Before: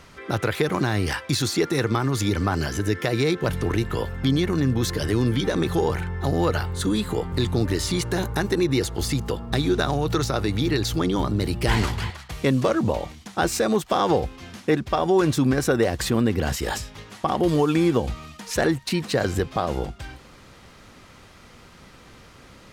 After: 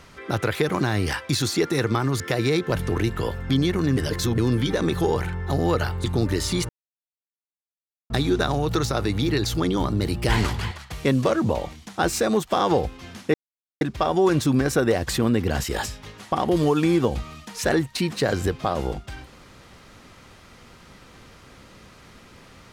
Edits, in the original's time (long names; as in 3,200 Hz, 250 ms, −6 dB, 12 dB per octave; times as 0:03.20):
0:02.20–0:02.94: remove
0:04.71–0:05.12: reverse
0:06.78–0:07.43: remove
0:08.08–0:09.49: silence
0:14.73: splice in silence 0.47 s